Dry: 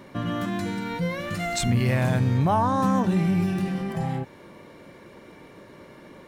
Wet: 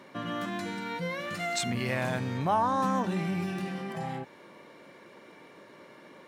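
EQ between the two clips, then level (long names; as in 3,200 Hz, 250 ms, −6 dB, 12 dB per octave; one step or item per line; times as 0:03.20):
high-pass filter 150 Hz 12 dB per octave
low-shelf EQ 440 Hz −7 dB
high-shelf EQ 9,100 Hz −7 dB
−1.5 dB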